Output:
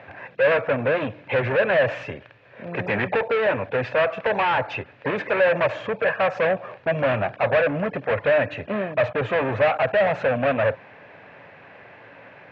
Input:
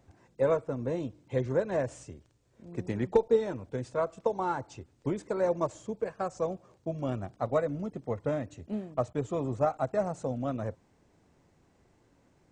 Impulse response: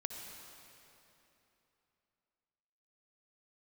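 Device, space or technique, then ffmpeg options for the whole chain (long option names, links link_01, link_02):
overdrive pedal into a guitar cabinet: -filter_complex "[0:a]asplit=2[link_01][link_02];[link_02]highpass=frequency=720:poles=1,volume=35dB,asoftclip=type=tanh:threshold=-10.5dB[link_03];[link_01][link_03]amix=inputs=2:normalize=0,lowpass=frequency=2100:poles=1,volume=-6dB,highpass=85,equalizer=frequency=110:width_type=q:width=4:gain=6,equalizer=frequency=230:width_type=q:width=4:gain=-4,equalizer=frequency=340:width_type=q:width=4:gain=-9,equalizer=frequency=580:width_type=q:width=4:gain=6,equalizer=frequency=1700:width_type=q:width=4:gain=10,equalizer=frequency=2500:width_type=q:width=4:gain=10,lowpass=frequency=3600:width=0.5412,lowpass=frequency=3600:width=1.3066,volume=-4dB"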